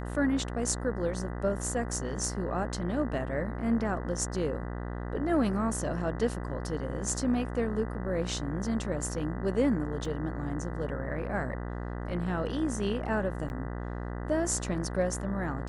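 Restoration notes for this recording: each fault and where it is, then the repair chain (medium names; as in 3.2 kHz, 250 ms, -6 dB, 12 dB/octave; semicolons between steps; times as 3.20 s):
buzz 60 Hz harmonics 33 -36 dBFS
10.05 s: dropout 2.2 ms
13.49–13.50 s: dropout 9.9 ms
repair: de-hum 60 Hz, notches 33; interpolate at 10.05 s, 2.2 ms; interpolate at 13.49 s, 9.9 ms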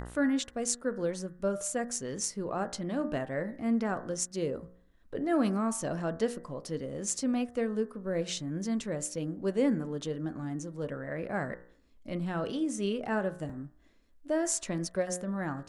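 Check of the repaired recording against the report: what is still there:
nothing left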